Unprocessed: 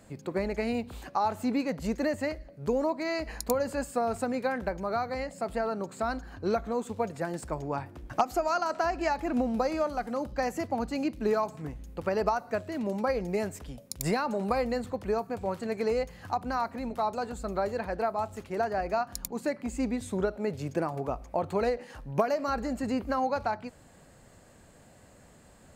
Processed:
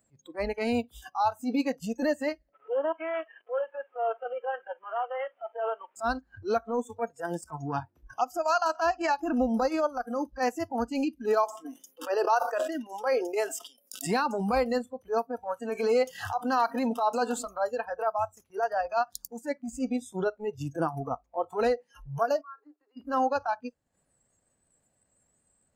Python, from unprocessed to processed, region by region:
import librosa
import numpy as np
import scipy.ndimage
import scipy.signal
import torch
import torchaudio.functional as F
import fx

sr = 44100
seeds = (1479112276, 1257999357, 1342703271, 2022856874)

y = fx.chain(x, sr, fx.delta_mod(bps=16000, step_db=-37.5),
    fx.highpass(hz=390.0, slope=24),
    fx.air_absorb(metres=310.0), at=(2.53, 5.96))
y = fx.chain(y, sr, fx.highpass(hz=280.0, slope=24),
    fx.sustainer(db_per_s=53.0), at=(11.44, 14.07))
y = fx.chain(y, sr, fx.highpass(hz=150.0, slope=12),
    fx.env_flatten(amount_pct=50), at=(15.69, 17.46))
y = fx.chain(y, sr, fx.air_absorb(metres=130.0),
    fx.level_steps(step_db=19),
    fx.cheby_ripple_highpass(hz=290.0, ripple_db=9), at=(22.41, 22.97))
y = fx.transient(y, sr, attack_db=-12, sustain_db=-8)
y = fx.noise_reduce_blind(y, sr, reduce_db=24)
y = y * librosa.db_to_amplitude(5.0)